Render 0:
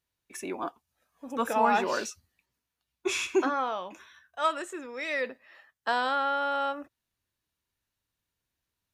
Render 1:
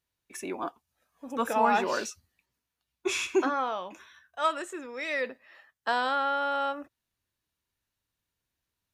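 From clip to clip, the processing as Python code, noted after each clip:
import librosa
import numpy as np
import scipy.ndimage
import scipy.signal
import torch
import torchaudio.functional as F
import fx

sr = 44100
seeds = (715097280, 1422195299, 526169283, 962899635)

y = x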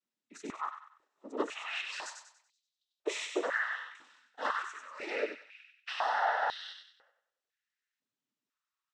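y = fx.noise_vocoder(x, sr, seeds[0], bands=12)
y = fx.echo_wet_highpass(y, sr, ms=95, feedback_pct=38, hz=1500.0, wet_db=-5.0)
y = fx.filter_held_highpass(y, sr, hz=2.0, low_hz=240.0, high_hz=3800.0)
y = F.gain(torch.from_numpy(y), -8.0).numpy()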